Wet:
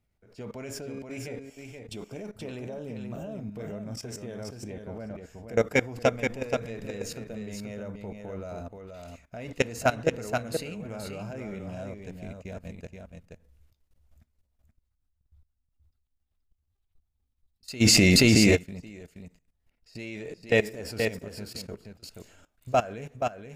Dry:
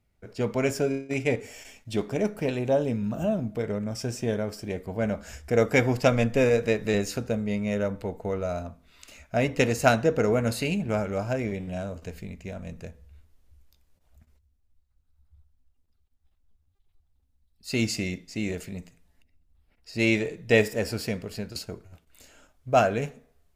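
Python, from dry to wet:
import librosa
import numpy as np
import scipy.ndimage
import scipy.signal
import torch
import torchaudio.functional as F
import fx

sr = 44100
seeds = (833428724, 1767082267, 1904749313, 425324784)

y = fx.notch(x, sr, hz=1800.0, q=5.7, at=(1.5, 2.14))
y = fx.lowpass(y, sr, hz=fx.line((4.52, 2700.0), (5.14, 1500.0)), slope=6, at=(4.52, 5.14), fade=0.02)
y = fx.level_steps(y, sr, step_db=19)
y = y + 10.0 ** (-5.5 / 20.0) * np.pad(y, (int(477 * sr / 1000.0), 0))[:len(y)]
y = fx.env_flatten(y, sr, amount_pct=100, at=(17.8, 18.55), fade=0.02)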